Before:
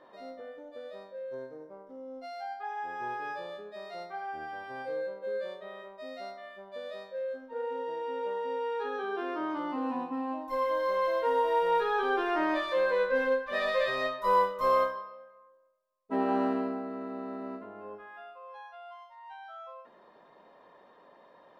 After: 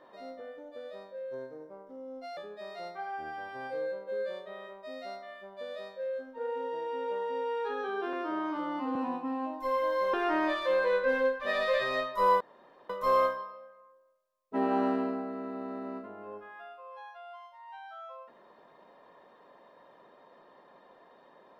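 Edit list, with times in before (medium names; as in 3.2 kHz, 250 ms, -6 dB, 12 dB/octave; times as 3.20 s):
2.37–3.52 s: delete
9.28–9.83 s: stretch 1.5×
11.01–12.20 s: delete
14.47 s: insert room tone 0.49 s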